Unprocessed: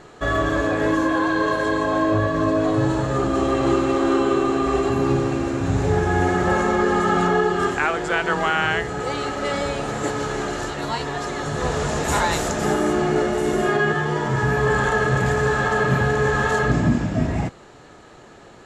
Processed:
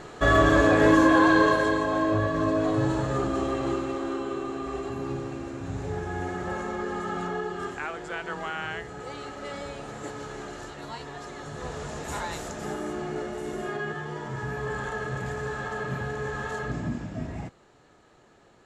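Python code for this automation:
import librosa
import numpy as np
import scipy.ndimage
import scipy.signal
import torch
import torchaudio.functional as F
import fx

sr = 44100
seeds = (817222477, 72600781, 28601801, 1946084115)

y = fx.gain(x, sr, db=fx.line((1.36, 2.0), (1.86, -5.0), (3.12, -5.0), (4.18, -12.5)))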